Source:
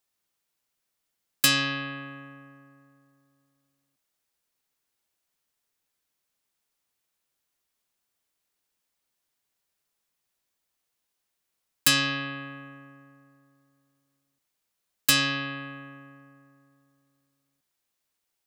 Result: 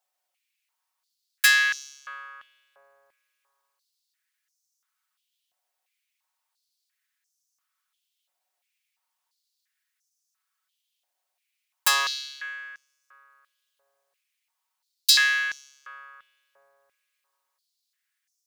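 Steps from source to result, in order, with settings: comb filter that takes the minimum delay 5.4 ms; step-sequenced high-pass 2.9 Hz 690–5900 Hz

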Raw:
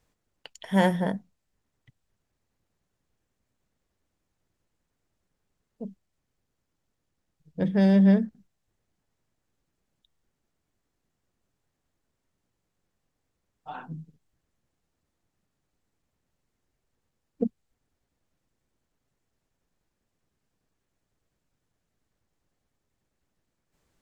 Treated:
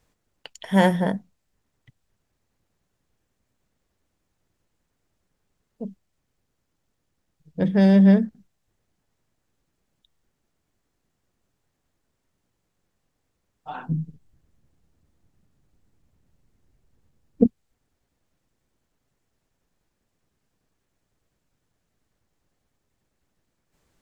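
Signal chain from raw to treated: 13.89–17.46 s: bass shelf 290 Hz +12 dB; trim +4 dB

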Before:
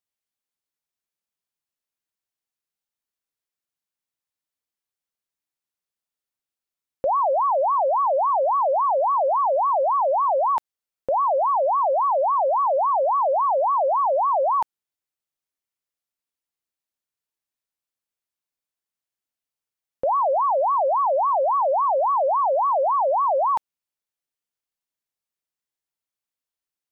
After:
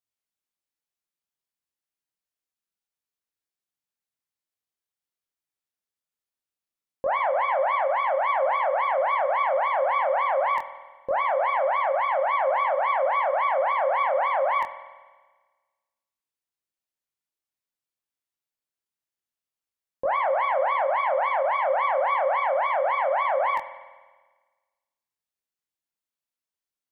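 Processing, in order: self-modulated delay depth 0.094 ms; chorus 0.25 Hz, delay 20 ms, depth 4.7 ms; spring tank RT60 1.4 s, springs 49 ms, chirp 45 ms, DRR 12 dB

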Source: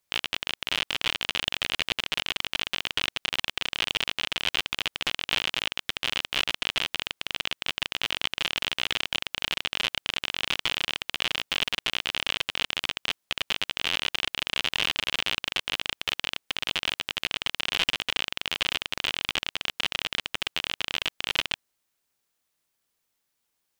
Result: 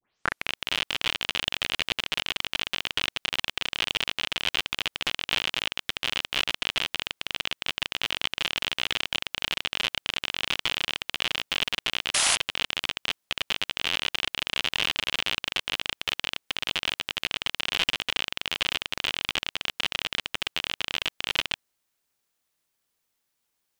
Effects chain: tape start-up on the opening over 0.54 s; painted sound noise, 12.14–12.36 s, 550–11000 Hz -23 dBFS

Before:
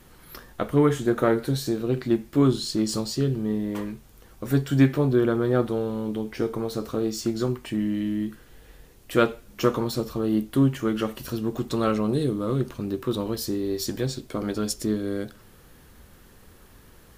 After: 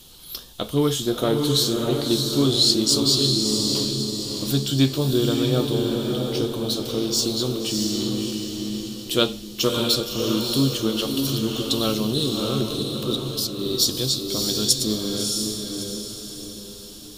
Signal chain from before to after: resonant high shelf 2.6 kHz +10.5 dB, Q 3; 12.82–13.59 s: level held to a coarse grid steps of 12 dB; echo that smears into a reverb 638 ms, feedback 46%, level -3 dB; trim -1 dB

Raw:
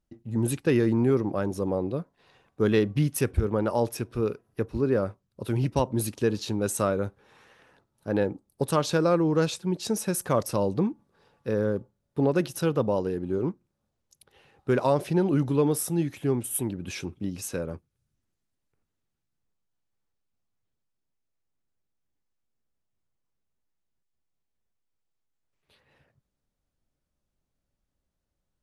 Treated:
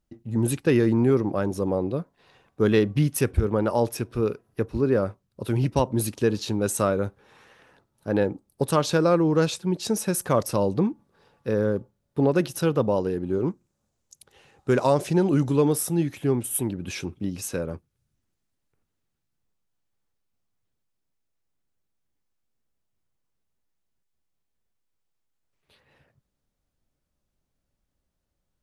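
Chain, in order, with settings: 13.46–15.73 s: peaking EQ 7.1 kHz +9 dB 0.73 oct; trim +2.5 dB

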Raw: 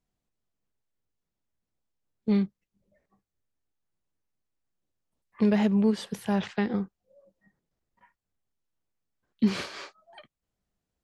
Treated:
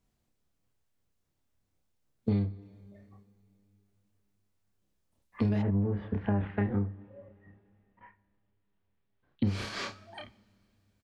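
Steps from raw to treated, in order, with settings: octave divider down 1 oct, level +1 dB; doubling 30 ms -3 dB; two-slope reverb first 0.74 s, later 3.3 s, from -20 dB, DRR 17.5 dB; compression 6:1, threshold -30 dBFS, peak gain reduction 16.5 dB; 5.61–9.43 s: low-pass 1.8 kHz -> 3.9 kHz 24 dB/octave; trim +3.5 dB

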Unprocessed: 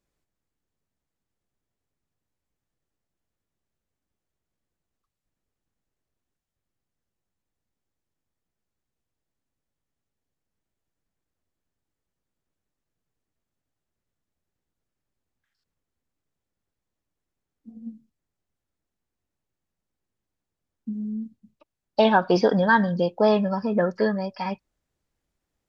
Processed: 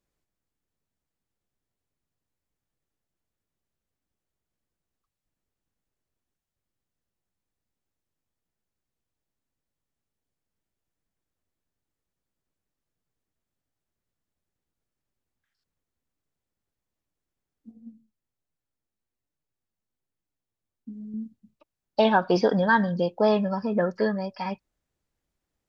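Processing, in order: 17.71–21.14 s: flange 1.2 Hz, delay 6.2 ms, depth 3.3 ms, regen +49%; trim -2 dB

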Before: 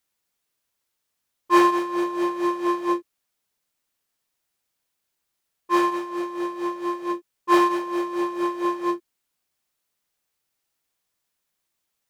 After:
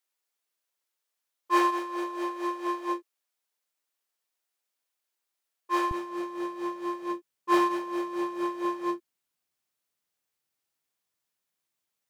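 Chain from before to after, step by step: high-pass 370 Hz 12 dB/octave, from 5.91 s 77 Hz; trim -5.5 dB

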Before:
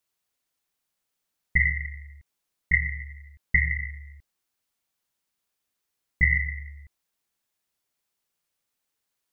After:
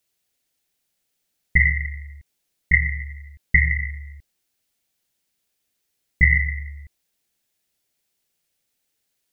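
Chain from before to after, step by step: peaking EQ 1.1 kHz -9 dB 0.84 oct; trim +6.5 dB

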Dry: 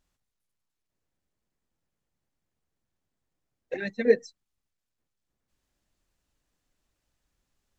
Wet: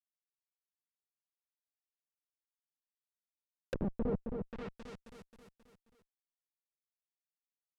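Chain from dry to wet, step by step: Schmitt trigger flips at -27.5 dBFS; feedback delay 267 ms, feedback 52%, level -5.5 dB; low-pass that closes with the level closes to 610 Hz, closed at -39 dBFS; trim +5 dB

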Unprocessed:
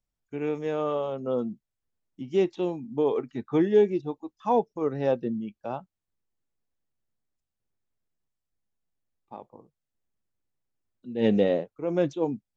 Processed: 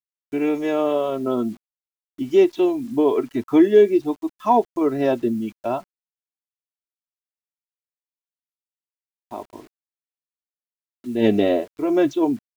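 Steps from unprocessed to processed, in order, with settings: comb 3 ms, depth 87%; in parallel at -3 dB: compression 16:1, threshold -29 dBFS, peak gain reduction 16.5 dB; on the sum: bit crusher 9-bit; trim +3.5 dB

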